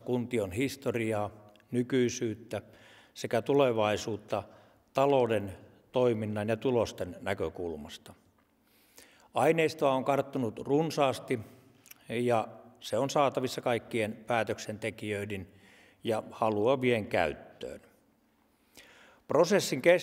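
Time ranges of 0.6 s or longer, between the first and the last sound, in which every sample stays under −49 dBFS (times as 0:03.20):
0:08.13–0:08.96
0:17.87–0:18.76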